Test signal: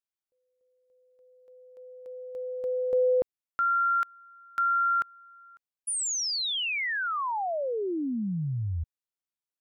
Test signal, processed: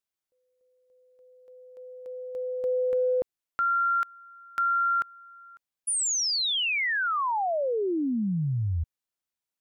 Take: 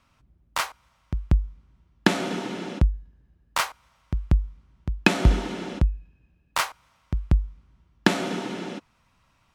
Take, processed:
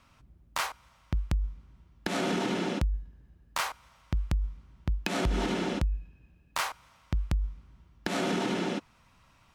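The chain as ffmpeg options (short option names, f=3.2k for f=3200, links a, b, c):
-af "acompressor=threshold=-25dB:ratio=10:attack=0.53:release=126:knee=1:detection=peak,volume=3dB"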